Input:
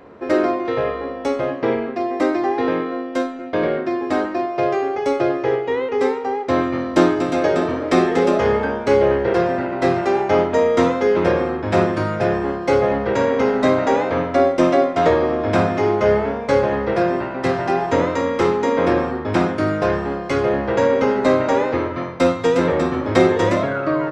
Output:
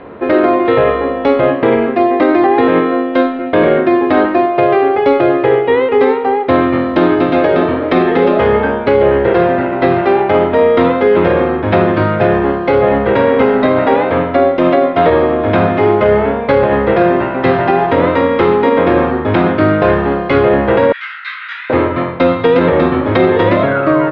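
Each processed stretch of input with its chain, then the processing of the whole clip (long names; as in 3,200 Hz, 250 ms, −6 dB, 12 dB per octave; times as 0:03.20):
0:20.92–0:21.70: Butterworth high-pass 1,400 Hz 48 dB per octave + micro pitch shift up and down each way 59 cents
whole clip: Butterworth low-pass 3,800 Hz 36 dB per octave; speech leveller 2 s; brickwall limiter −10 dBFS; level +8.5 dB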